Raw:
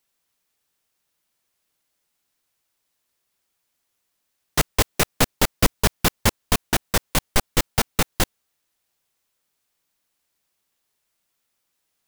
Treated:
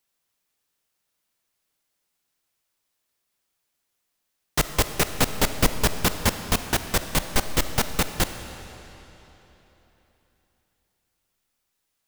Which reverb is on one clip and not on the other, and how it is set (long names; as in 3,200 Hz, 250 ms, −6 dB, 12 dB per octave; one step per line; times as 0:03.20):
comb and all-pass reverb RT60 3.6 s, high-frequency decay 0.9×, pre-delay 5 ms, DRR 9 dB
level −2.5 dB